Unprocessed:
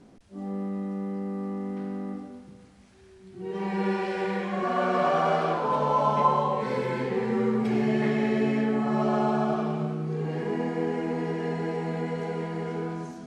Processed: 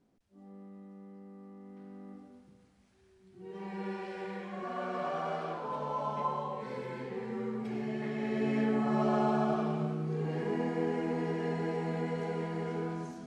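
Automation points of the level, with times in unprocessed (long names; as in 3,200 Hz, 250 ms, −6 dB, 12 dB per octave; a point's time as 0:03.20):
0:01.55 −18.5 dB
0:02.39 −11.5 dB
0:08.08 −11.5 dB
0:08.62 −4 dB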